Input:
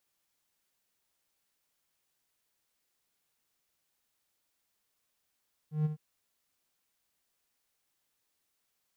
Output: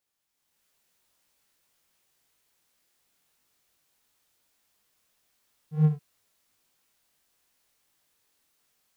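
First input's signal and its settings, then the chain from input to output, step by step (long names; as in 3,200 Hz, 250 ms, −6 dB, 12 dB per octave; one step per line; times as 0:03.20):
note with an ADSR envelope triangle 153 Hz, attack 143 ms, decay 23 ms, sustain −9.5 dB, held 0.21 s, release 48 ms −22 dBFS
automatic gain control gain up to 10.5 dB
chorus effect 2.9 Hz, delay 19.5 ms, depth 5.4 ms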